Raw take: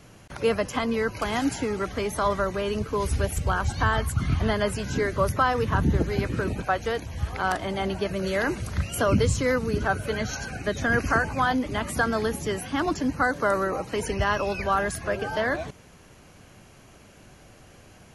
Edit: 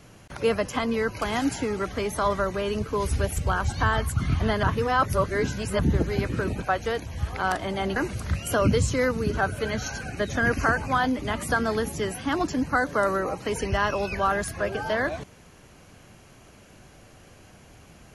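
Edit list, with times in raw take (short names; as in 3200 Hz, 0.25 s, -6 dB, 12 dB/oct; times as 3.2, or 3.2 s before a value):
4.63–5.79 reverse
7.96–8.43 cut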